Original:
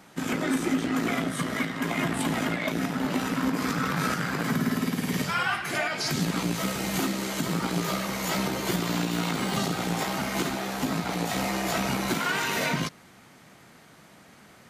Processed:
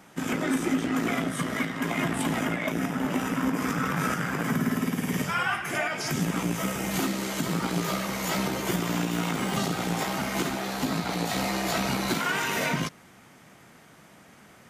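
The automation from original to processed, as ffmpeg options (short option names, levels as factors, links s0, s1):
-af "asetnsamples=n=441:p=0,asendcmd='2.4 equalizer g -14.5;6.91 equalizer g -2.5;8.62 equalizer g -8.5;9.57 equalizer g -2.5;10.64 equalizer g 3.5;12.21 equalizer g -5.5',equalizer=f=4200:t=o:w=0.3:g=-6"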